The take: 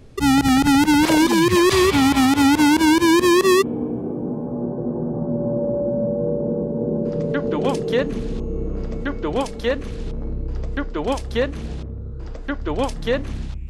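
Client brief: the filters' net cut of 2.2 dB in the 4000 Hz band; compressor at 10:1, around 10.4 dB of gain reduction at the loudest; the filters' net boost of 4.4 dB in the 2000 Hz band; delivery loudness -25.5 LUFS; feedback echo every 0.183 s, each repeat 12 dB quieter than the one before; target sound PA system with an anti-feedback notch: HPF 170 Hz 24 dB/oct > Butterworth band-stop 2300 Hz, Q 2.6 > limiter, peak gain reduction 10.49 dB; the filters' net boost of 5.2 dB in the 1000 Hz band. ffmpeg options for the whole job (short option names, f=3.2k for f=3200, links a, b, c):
-af "equalizer=f=1k:t=o:g=4.5,equalizer=f=2k:t=o:g=8,equalizer=f=4k:t=o:g=-6,acompressor=threshold=-20dB:ratio=10,highpass=f=170:w=0.5412,highpass=f=170:w=1.3066,asuperstop=centerf=2300:order=8:qfactor=2.6,aecho=1:1:183|366|549:0.251|0.0628|0.0157,volume=6dB,alimiter=limit=-17dB:level=0:latency=1"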